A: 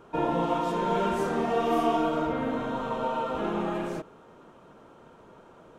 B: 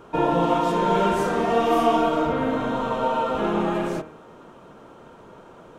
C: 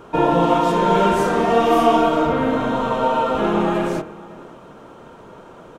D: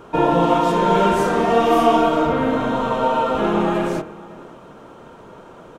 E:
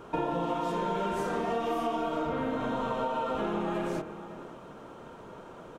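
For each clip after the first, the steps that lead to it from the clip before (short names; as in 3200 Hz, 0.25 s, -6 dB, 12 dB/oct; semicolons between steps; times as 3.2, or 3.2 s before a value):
de-hum 78.28 Hz, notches 34; gain +6.5 dB
outdoor echo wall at 94 m, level -21 dB; gain +4.5 dB
nothing audible
compressor, threshold -23 dBFS, peak gain reduction 12.5 dB; gain -5 dB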